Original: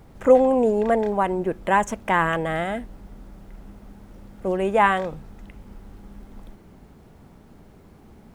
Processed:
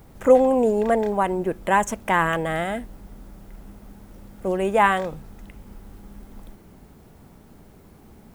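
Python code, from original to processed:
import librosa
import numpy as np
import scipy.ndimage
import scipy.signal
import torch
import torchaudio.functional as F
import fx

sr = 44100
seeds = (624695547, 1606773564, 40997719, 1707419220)

y = fx.high_shelf(x, sr, hz=8200.0, db=10.5)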